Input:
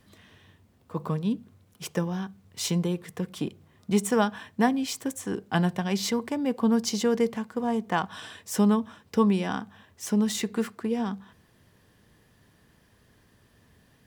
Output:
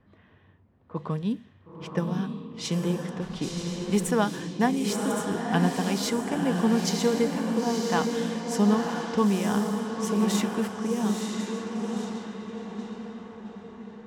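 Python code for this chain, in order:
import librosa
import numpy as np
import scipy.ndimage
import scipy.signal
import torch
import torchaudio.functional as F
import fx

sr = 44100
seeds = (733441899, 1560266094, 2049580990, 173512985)

y = fx.echo_diffused(x, sr, ms=971, feedback_pct=54, wet_db=-3)
y = fx.dmg_noise_colour(y, sr, seeds[0], colour='pink', level_db=-47.0, at=(3.2, 4.09), fade=0.02)
y = fx.env_lowpass(y, sr, base_hz=1600.0, full_db=-22.5)
y = y * 10.0 ** (-1.0 / 20.0)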